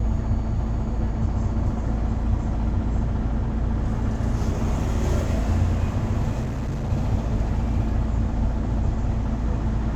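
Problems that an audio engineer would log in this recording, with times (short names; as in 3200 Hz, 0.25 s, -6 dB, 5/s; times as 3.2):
6.41–6.92 clipped -23 dBFS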